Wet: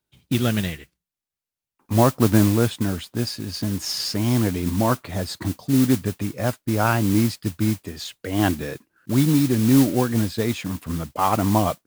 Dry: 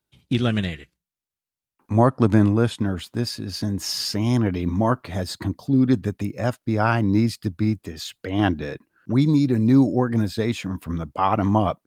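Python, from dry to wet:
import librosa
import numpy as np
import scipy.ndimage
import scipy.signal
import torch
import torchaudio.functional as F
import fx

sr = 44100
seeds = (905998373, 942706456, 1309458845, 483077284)

y = fx.mod_noise(x, sr, seeds[0], snr_db=15)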